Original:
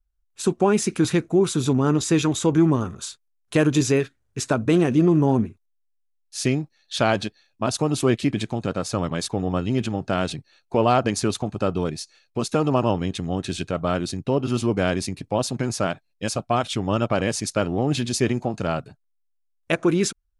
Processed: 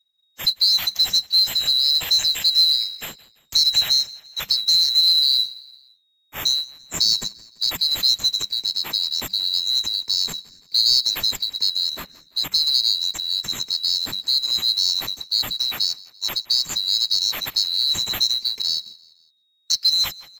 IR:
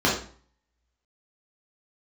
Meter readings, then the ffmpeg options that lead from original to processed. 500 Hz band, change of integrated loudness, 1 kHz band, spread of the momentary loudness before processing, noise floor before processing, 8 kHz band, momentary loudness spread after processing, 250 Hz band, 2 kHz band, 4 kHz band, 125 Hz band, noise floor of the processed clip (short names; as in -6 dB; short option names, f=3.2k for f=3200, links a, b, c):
-24.5 dB, +4.5 dB, -14.5 dB, 9 LU, -70 dBFS, +2.5 dB, 9 LU, -25.5 dB, -5.5 dB, +18.5 dB, -22.5 dB, -65 dBFS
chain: -filter_complex "[0:a]afftfilt=real='real(if(lt(b,736),b+184*(1-2*mod(floor(b/184),2)),b),0)':imag='imag(if(lt(b,736),b+184*(1-2*mod(floor(b/184),2)),b),0)':win_size=2048:overlap=0.75,acrusher=bits=5:mode=log:mix=0:aa=0.000001,aecho=1:1:169|338|507:0.075|0.0345|0.0159,afreqshift=-200,acrossover=split=160|3000[a][b][c];[b]acompressor=threshold=-33dB:ratio=6[d];[a][d][c]amix=inputs=3:normalize=0,volume=1.5dB"